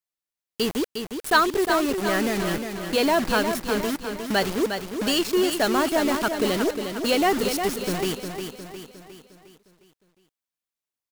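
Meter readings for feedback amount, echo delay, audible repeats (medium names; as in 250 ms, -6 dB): 49%, 357 ms, 5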